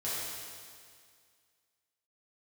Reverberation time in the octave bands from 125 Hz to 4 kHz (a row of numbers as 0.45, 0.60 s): 2.0, 2.0, 2.0, 2.0, 2.0, 2.0 s